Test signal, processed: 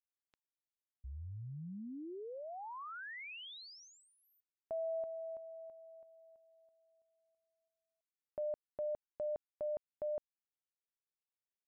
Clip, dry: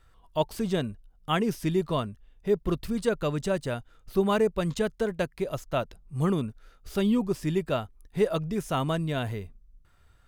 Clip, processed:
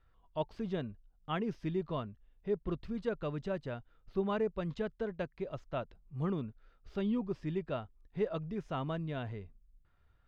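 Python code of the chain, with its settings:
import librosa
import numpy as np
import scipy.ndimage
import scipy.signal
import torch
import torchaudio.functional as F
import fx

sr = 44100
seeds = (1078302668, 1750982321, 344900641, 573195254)

y = fx.air_absorb(x, sr, metres=220.0)
y = y * 10.0 ** (-8.5 / 20.0)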